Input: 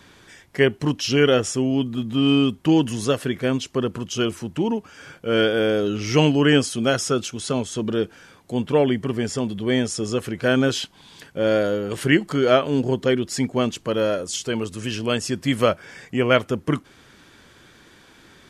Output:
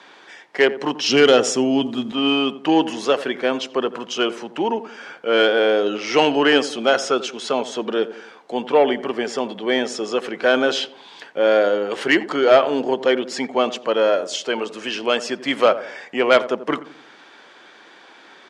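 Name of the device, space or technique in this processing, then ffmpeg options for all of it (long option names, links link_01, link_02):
intercom: -filter_complex "[0:a]highpass=420,lowpass=4400,equalizer=frequency=800:width_type=o:width=0.54:gain=5.5,asoftclip=type=tanh:threshold=-9.5dB,highpass=frequency=140:width=0.5412,highpass=frequency=140:width=1.3066,asettb=1/sr,asplit=3[link_01][link_02][link_03];[link_01]atrim=end=1.064[link_04];[link_02]atrim=start=1.06:end=2.12,asetpts=PTS-STARTPTS,afade=type=in:duration=0.004:curve=qsin,afade=type=out:start_time=1.056:duration=0.004:curve=qsin,bass=frequency=250:gain=12,treble=frequency=4000:gain=9[link_05];[link_03]atrim=start=2.116[link_06];[link_04][link_05]acrossfade=duration=0.004:curve1=hsin:curve2=qsin[link_07];[link_07][link_06]acrossfade=duration=0.004:curve1=qsin:curve2=hsin,asplit=2[link_08][link_09];[link_09]adelay=87,lowpass=frequency=960:poles=1,volume=-13dB,asplit=2[link_10][link_11];[link_11]adelay=87,lowpass=frequency=960:poles=1,volume=0.48,asplit=2[link_12][link_13];[link_13]adelay=87,lowpass=frequency=960:poles=1,volume=0.48,asplit=2[link_14][link_15];[link_15]adelay=87,lowpass=frequency=960:poles=1,volume=0.48,asplit=2[link_16][link_17];[link_17]adelay=87,lowpass=frequency=960:poles=1,volume=0.48[link_18];[link_08][link_10][link_12][link_14][link_16][link_18]amix=inputs=6:normalize=0,volume=5.5dB"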